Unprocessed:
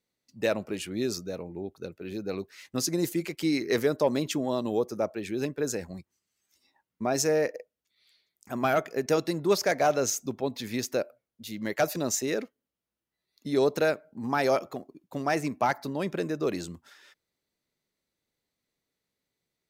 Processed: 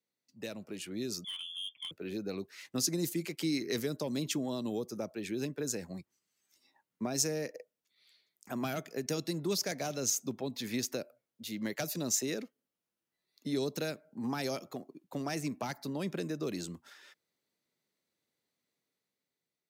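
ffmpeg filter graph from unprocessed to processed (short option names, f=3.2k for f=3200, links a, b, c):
-filter_complex "[0:a]asettb=1/sr,asplit=3[a][b][c];[a]atrim=end=1.244[d];[b]atrim=start=1.24:end=1.91,asetpts=PTS-STARTPTS,afade=t=in:d=0.004:c=qsin,afade=t=out:st=0.666:d=0.004:c=qsin,highpass=98,lowpass=f=3.1k:t=q:w=0.5098,lowpass=f=3.1k:t=q:w=0.6013,lowpass=f=3.1k:t=q:w=0.9,lowpass=f=3.1k:t=q:w=2.563,afreqshift=-3600,aeval=exprs='(tanh(44.7*val(0)+0.05)-tanh(0.05))/44.7':c=same[e];[c]atrim=start=1.906[f];[d][e]acrossfade=d=0.004:c1=hsin:c2=qsin[g];[g][f]acrossfade=d=0.004:c1=qsin:c2=hsin,acrossover=split=260|3000[h][i][j];[i]acompressor=threshold=-37dB:ratio=6[k];[h][k][j]amix=inputs=3:normalize=0,highpass=130,dynaudnorm=f=310:g=7:m=6dB,volume=-7dB"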